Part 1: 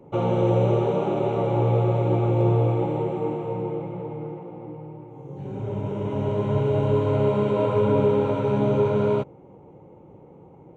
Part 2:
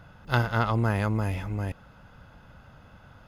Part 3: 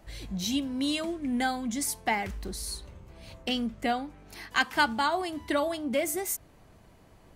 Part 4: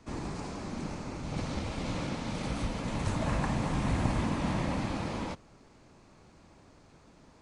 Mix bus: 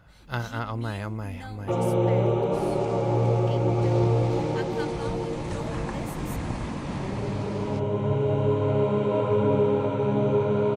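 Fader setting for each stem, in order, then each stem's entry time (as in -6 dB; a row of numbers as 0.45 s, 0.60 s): -2.0 dB, -6.0 dB, -14.5 dB, -2.0 dB; 1.55 s, 0.00 s, 0.00 s, 2.45 s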